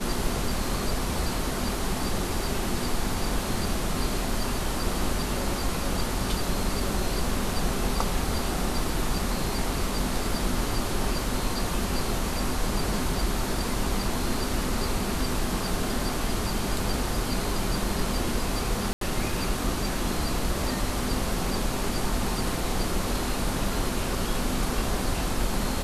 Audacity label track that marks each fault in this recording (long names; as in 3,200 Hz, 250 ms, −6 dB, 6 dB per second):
18.930000	19.010000	drop-out 83 ms